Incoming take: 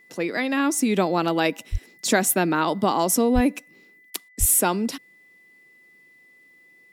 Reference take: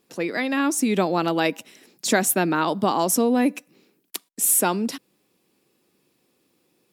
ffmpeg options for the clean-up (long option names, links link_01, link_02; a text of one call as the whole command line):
ffmpeg -i in.wav -filter_complex "[0:a]bandreject=frequency=2000:width=30,asplit=3[link_01][link_02][link_03];[link_01]afade=type=out:start_time=1.71:duration=0.02[link_04];[link_02]highpass=frequency=140:width=0.5412,highpass=frequency=140:width=1.3066,afade=type=in:start_time=1.71:duration=0.02,afade=type=out:start_time=1.83:duration=0.02[link_05];[link_03]afade=type=in:start_time=1.83:duration=0.02[link_06];[link_04][link_05][link_06]amix=inputs=3:normalize=0,asplit=3[link_07][link_08][link_09];[link_07]afade=type=out:start_time=3.34:duration=0.02[link_10];[link_08]highpass=frequency=140:width=0.5412,highpass=frequency=140:width=1.3066,afade=type=in:start_time=3.34:duration=0.02,afade=type=out:start_time=3.46:duration=0.02[link_11];[link_09]afade=type=in:start_time=3.46:duration=0.02[link_12];[link_10][link_11][link_12]amix=inputs=3:normalize=0,asplit=3[link_13][link_14][link_15];[link_13]afade=type=out:start_time=4.39:duration=0.02[link_16];[link_14]highpass=frequency=140:width=0.5412,highpass=frequency=140:width=1.3066,afade=type=in:start_time=4.39:duration=0.02,afade=type=out:start_time=4.51:duration=0.02[link_17];[link_15]afade=type=in:start_time=4.51:duration=0.02[link_18];[link_16][link_17][link_18]amix=inputs=3:normalize=0" out.wav